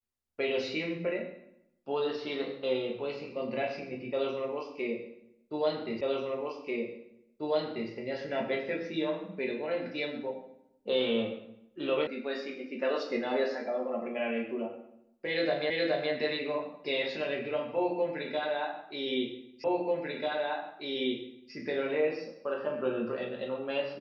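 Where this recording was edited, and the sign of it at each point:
0:06.01: the same again, the last 1.89 s
0:12.07: cut off before it has died away
0:15.70: the same again, the last 0.42 s
0:19.64: the same again, the last 1.89 s

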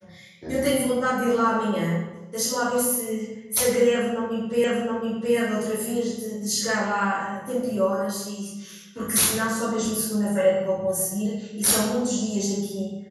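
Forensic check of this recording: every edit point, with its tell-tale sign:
0:04.64: the same again, the last 0.72 s

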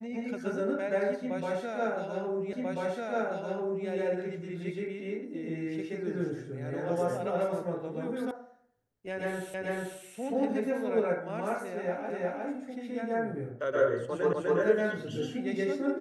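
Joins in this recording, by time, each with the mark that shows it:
0:02.53: the same again, the last 1.34 s
0:08.31: cut off before it has died away
0:09.54: the same again, the last 0.44 s
0:12.10: the same again, the last 0.36 s
0:14.33: the same again, the last 0.25 s

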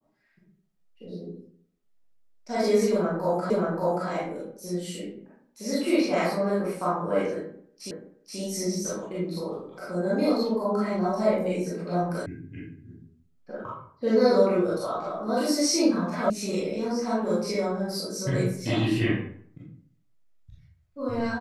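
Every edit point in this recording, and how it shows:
0:03.50: the same again, the last 0.58 s
0:07.91: the same again, the last 0.48 s
0:12.26: cut off before it has died away
0:16.30: cut off before it has died away

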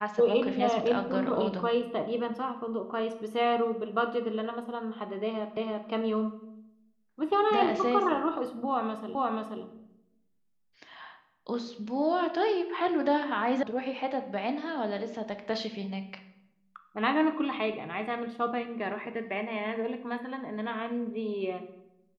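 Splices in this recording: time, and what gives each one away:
0:05.57: the same again, the last 0.33 s
0:09.15: the same again, the last 0.48 s
0:13.63: cut off before it has died away

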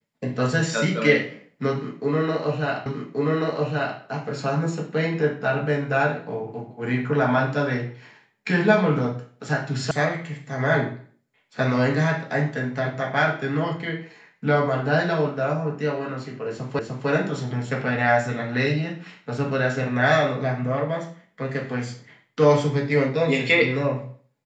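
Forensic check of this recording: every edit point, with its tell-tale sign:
0:02.86: the same again, the last 1.13 s
0:09.91: cut off before it has died away
0:16.79: the same again, the last 0.3 s

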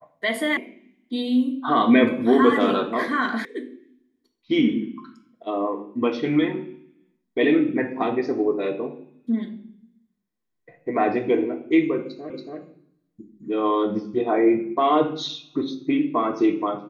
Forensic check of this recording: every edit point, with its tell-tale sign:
0:00.57: cut off before it has died away
0:03.45: cut off before it has died away
0:12.30: the same again, the last 0.28 s

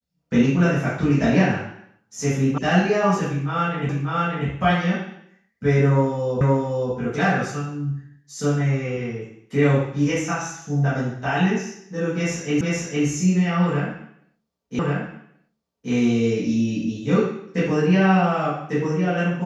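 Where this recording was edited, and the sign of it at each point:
0:02.58: cut off before it has died away
0:03.89: the same again, the last 0.59 s
0:06.41: the same again, the last 0.52 s
0:12.61: the same again, the last 0.46 s
0:14.79: the same again, the last 1.13 s

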